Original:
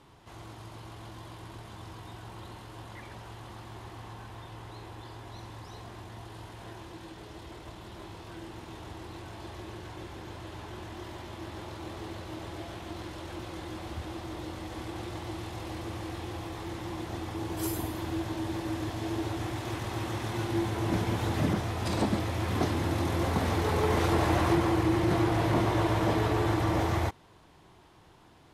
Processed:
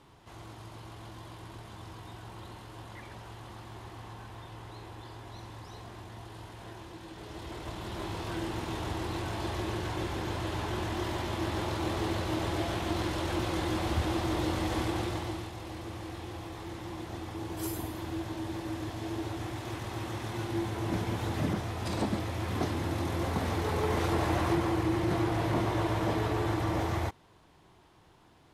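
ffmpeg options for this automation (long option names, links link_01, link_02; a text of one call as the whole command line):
ffmpeg -i in.wav -af "volume=8.5dB,afade=type=in:start_time=7.06:duration=1.17:silence=0.334965,afade=type=out:start_time=14.73:duration=0.79:silence=0.266073" out.wav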